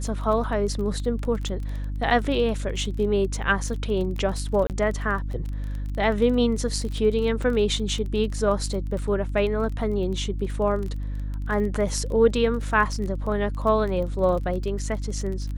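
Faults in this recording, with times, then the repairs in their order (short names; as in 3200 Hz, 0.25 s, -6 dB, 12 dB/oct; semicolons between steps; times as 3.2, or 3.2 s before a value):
crackle 22/s -30 dBFS
hum 50 Hz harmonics 6 -29 dBFS
4.67–4.7 gap 28 ms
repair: de-click; de-hum 50 Hz, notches 6; interpolate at 4.67, 28 ms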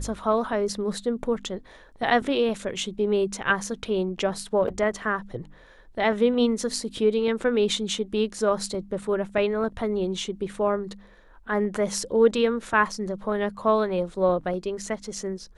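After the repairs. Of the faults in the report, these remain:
none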